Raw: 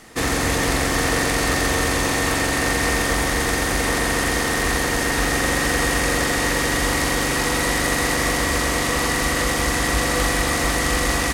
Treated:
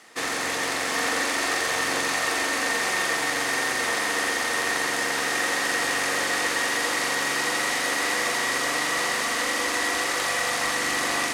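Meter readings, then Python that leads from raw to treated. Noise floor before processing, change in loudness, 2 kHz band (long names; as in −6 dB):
−22 dBFS, −4.0 dB, −2.0 dB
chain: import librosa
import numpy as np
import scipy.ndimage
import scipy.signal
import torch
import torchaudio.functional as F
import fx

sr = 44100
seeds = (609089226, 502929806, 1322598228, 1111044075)

p1 = fx.weighting(x, sr, curve='A')
p2 = p1 + fx.echo_single(p1, sr, ms=706, db=-5.0, dry=0)
y = p2 * 10.0 ** (-4.5 / 20.0)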